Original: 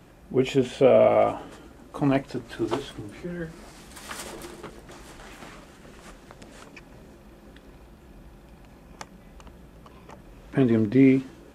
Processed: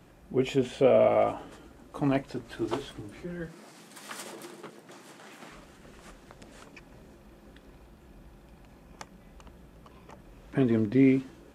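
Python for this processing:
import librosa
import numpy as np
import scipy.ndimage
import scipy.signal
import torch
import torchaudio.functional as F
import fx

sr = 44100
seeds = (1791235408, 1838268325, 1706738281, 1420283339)

y = fx.highpass(x, sr, hz=150.0, slope=24, at=(3.47, 5.52))
y = F.gain(torch.from_numpy(y), -4.0).numpy()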